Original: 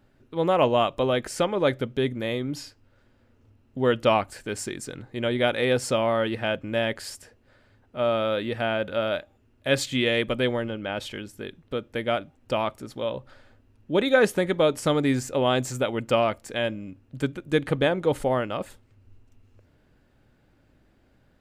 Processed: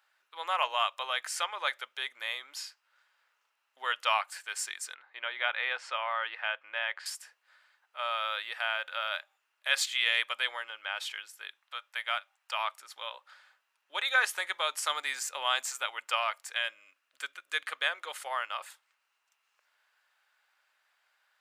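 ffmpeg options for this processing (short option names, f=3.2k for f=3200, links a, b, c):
-filter_complex "[0:a]asettb=1/sr,asplit=3[a][b][c];[a]atrim=end=4.944[d];[b]atrim=start=4.94:end=7.06,asetpts=PTS-STARTPTS,afade=t=in:d=0.004:c=qsin,afade=t=out:st=2.116:d=0.004:c=qsin,lowpass=2.7k[e];[c]atrim=start=7.056[f];[d][e]acrossfade=d=0.004:c1=hsin:c2=qsin[g];[g][f]acrossfade=d=0.004:c1=qsin:c2=hsin,asettb=1/sr,asplit=3[h][i][j];[h]atrim=end=11.594[k];[i]atrim=start=11.59:end=12.59,asetpts=PTS-STARTPTS,afade=t=in:d=0.004:c=qsin,afade=t=out:st=0.996:d=0.004:c=qsin,highpass=f=580:w=0.5412,highpass=f=580:w=1.3066[l];[j]atrim=start=12.586[m];[k][l]acrossfade=d=0.004:c1=hsin:c2=qsin[n];[n][m]acrossfade=d=0.004:c1=qsin:c2=hsin,asettb=1/sr,asplit=3[o][p][q];[o]atrim=end=14.364[r];[p]atrim=start=14.36:end=15.65,asetpts=PTS-STARTPTS,afade=t=in:d=0.004:c=qsin,afade=t=out:st=1.286:d=0.004:c=qsin,bass=f=250:g=8,treble=f=4k:g=2[s];[q]atrim=start=15.646[t];[r][s]acrossfade=d=0.004:c1=hsin:c2=qsin[u];[u][t]acrossfade=d=0.004:c1=qsin:c2=hsin,asettb=1/sr,asplit=3[v][w][x];[v]atrim=end=16.554[y];[w]atrim=start=16.55:end=18.27,asetpts=PTS-STARTPTS,afade=t=in:d=0.004:c=qsin,afade=t=out:st=1.716:d=0.004:c=qsin,equalizer=f=860:w=4.1:g=-8[z];[x]atrim=start=18.266[aa];[y][z]acrossfade=d=0.004:c1=hsin:c2=qsin[ab];[ab][aa]acrossfade=d=0.004:c1=qsin:c2=hsin,highpass=f=990:w=0.5412,highpass=f=990:w=1.3066"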